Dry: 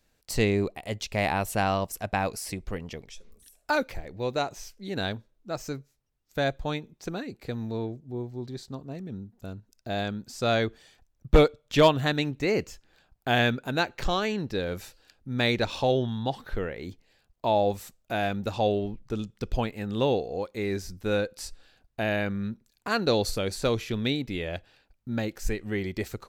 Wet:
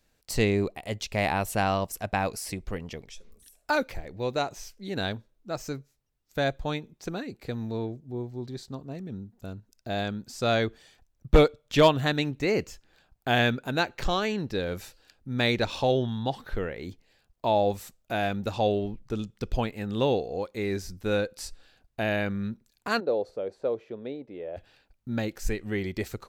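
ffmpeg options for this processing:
-filter_complex "[0:a]asplit=3[s0][s1][s2];[s0]afade=t=out:st=22.99:d=0.02[s3];[s1]bandpass=f=530:t=q:w=2.1,afade=t=in:st=22.99:d=0.02,afade=t=out:st=24.56:d=0.02[s4];[s2]afade=t=in:st=24.56:d=0.02[s5];[s3][s4][s5]amix=inputs=3:normalize=0"

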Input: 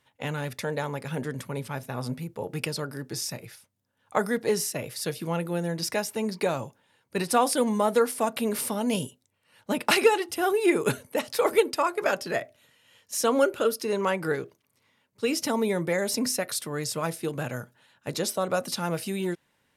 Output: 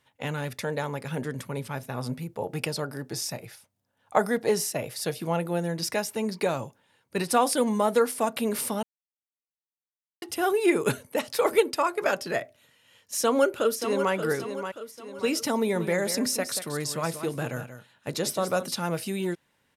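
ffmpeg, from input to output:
-filter_complex "[0:a]asettb=1/sr,asplit=3[s0][s1][s2];[s0]atrim=end=2.324[s3];[s1]atrim=start=2.32:end=5.6,asetpts=PTS-STARTPTS,afade=t=in:d=0.004:c=qsin,afade=t=out:st=3.276:d=0.004:c=qsin,equalizer=f=720:w=2.2:g=6[s4];[s2]atrim=start=5.596[s5];[s3][s4]acrossfade=d=0.004:c1=hsin:c2=qsin[s6];[s6][s5]acrossfade=d=0.004:c1=qsin:c2=hsin,asplit=2[s7][s8];[s8]afade=t=in:st=13.14:d=0.01,afade=t=out:st=14.13:d=0.01,aecho=0:1:580|1160|1740|2320|2900:0.375837|0.169127|0.0761071|0.0342482|0.0154117[s9];[s7][s9]amix=inputs=2:normalize=0,asettb=1/sr,asplit=3[s10][s11][s12];[s10]atrim=end=15.574[s13];[s11]atrim=start=15.57:end=18.68,asetpts=PTS-STARTPTS,afade=t=in:d=0.004:c=qsin,afade=t=out:st=3.106:d=0.004:c=qsin,aecho=1:1:183:0.299,atrim=end_sample=137151[s14];[s12]atrim=start=18.676[s15];[s13][s14]acrossfade=d=0.004:c1=hsin:c2=qsin[s16];[s16][s15]acrossfade=d=0.004:c1=qsin:c2=hsin,asplit=3[s17][s18][s19];[s17]atrim=end=8.83,asetpts=PTS-STARTPTS,afade=t=out:st=8.826:d=0.004:c=hsin[s20];[s18]atrim=start=8.83:end=10.22,asetpts=PTS-STARTPTS,volume=0[s21];[s19]atrim=start=10.22,asetpts=PTS-STARTPTS,afade=t=in:d=0.004:c=hsin[s22];[s20][s21][s22]concat=n=3:v=0:a=1"

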